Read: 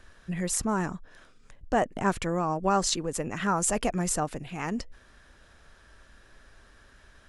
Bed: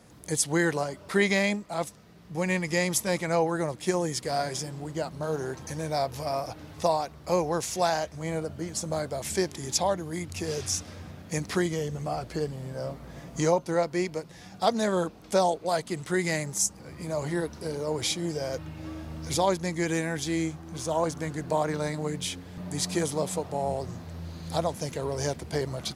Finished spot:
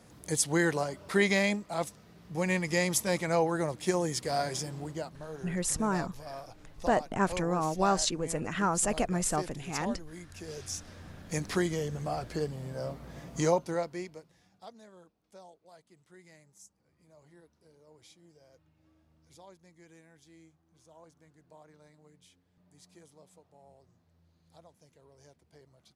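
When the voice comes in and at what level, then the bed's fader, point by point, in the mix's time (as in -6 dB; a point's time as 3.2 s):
5.15 s, -2.0 dB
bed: 4.84 s -2 dB
5.27 s -12.5 dB
10.31 s -12.5 dB
11.39 s -2.5 dB
13.59 s -2.5 dB
14.9 s -29 dB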